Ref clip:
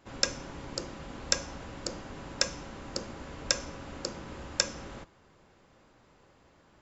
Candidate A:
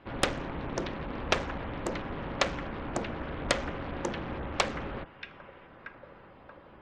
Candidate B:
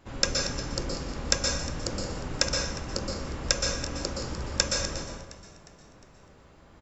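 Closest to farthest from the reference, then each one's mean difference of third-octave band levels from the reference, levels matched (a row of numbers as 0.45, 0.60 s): B, A; 3.5, 5.5 dB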